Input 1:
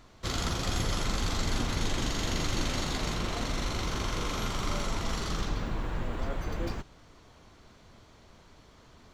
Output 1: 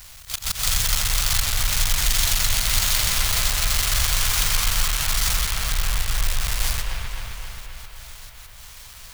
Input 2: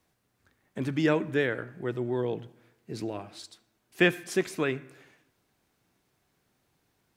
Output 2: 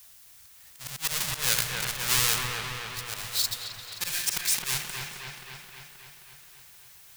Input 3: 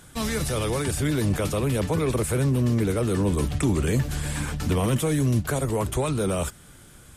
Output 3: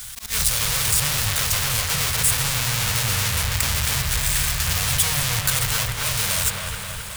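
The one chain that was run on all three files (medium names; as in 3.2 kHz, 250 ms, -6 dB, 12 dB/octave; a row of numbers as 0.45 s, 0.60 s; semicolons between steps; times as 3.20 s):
square wave that keeps the level; amplifier tone stack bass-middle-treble 10-0-10; in parallel at -0.5 dB: peak limiter -17.5 dBFS; on the sum: slow attack 149 ms; compression, threshold -25 dBFS; slow attack 163 ms; treble shelf 2.9 kHz +10.5 dB; saturation -5 dBFS; added noise blue -57 dBFS; on a send: feedback echo behind a low-pass 264 ms, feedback 66%, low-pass 2.8 kHz, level -3 dB; on the sum: modulated delay 218 ms, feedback 53%, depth 93 cents, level -15.5 dB; peak normalisation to -3 dBFS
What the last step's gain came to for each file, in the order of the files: +4.5 dB, +3.5 dB, +2.5 dB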